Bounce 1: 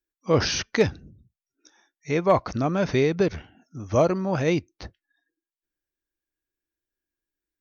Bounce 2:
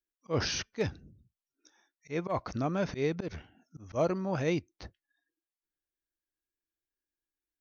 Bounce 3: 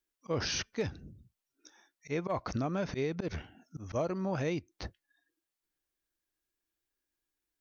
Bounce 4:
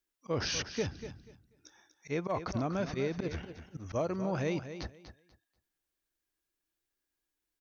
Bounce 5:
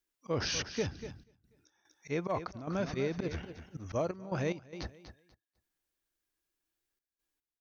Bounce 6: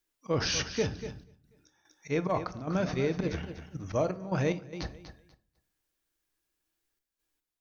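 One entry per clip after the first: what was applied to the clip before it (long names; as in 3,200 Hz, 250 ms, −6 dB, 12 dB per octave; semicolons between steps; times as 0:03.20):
volume swells 112 ms; level −7 dB
downward compressor, threshold −35 dBFS, peak gain reduction 11.5 dB; level +5 dB
repeating echo 243 ms, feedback 21%, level −11 dB
gate pattern "xxxxxx.x.xxx.x" 73 BPM −12 dB
convolution reverb RT60 0.45 s, pre-delay 6 ms, DRR 11 dB; level +3.5 dB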